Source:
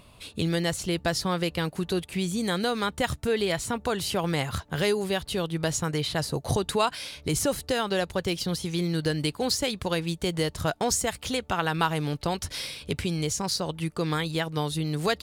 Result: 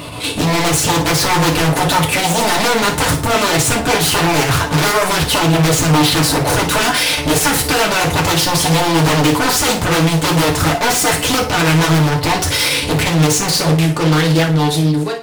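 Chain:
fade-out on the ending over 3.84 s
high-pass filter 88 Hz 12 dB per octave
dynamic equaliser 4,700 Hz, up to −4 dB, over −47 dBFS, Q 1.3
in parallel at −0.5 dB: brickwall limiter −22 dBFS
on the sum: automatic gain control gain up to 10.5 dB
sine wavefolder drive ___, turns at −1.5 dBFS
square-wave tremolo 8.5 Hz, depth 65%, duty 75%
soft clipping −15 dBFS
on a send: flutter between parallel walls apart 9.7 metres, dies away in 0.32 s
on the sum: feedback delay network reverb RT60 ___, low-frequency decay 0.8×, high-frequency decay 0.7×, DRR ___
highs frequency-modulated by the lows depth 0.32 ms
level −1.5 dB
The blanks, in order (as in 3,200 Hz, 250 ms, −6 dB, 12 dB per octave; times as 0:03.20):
15 dB, 0.35 s, −2 dB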